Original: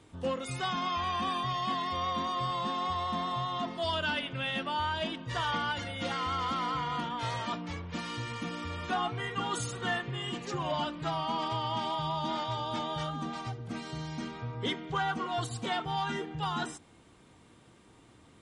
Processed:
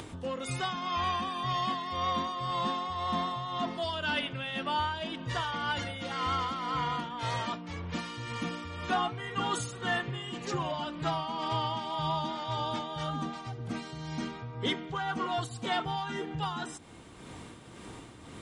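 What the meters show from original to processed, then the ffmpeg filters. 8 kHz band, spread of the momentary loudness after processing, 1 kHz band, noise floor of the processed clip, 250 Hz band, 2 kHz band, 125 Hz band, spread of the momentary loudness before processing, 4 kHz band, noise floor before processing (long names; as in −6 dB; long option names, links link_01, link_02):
0.0 dB, 8 LU, 0.0 dB, −48 dBFS, +0.5 dB, 0.0 dB, +0.5 dB, 6 LU, 0.0 dB, −59 dBFS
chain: -af "acompressor=mode=upward:threshold=-36dB:ratio=2.5,tremolo=f=1.9:d=0.51,volume=2.5dB"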